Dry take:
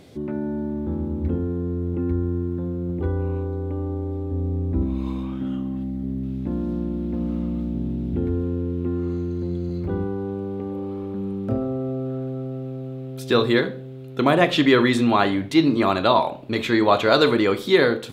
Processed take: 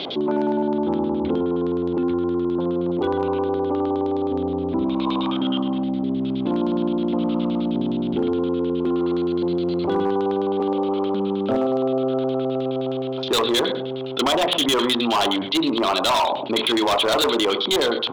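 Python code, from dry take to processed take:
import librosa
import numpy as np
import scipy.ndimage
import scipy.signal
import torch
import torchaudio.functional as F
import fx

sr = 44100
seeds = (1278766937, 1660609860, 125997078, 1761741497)

y = fx.rider(x, sr, range_db=4, speed_s=0.5)
y = fx.cabinet(y, sr, low_hz=350.0, low_slope=12, high_hz=5200.0, hz=(500.0, 1800.0, 3200.0), db=(-3, -9, 10))
y = fx.filter_lfo_lowpass(y, sr, shape='square', hz=9.6, low_hz=980.0, high_hz=3900.0, q=2.7)
y = fx.air_absorb(y, sr, metres=65.0)
y = y + 10.0 ** (-21.5 / 20.0) * np.pad(y, (int(124 * sr / 1000.0), 0))[:len(y)]
y = np.clip(y, -10.0 ** (-20.0 / 20.0), 10.0 ** (-20.0 / 20.0))
y = fx.env_flatten(y, sr, amount_pct=50)
y = F.gain(torch.from_numpy(y), 3.5).numpy()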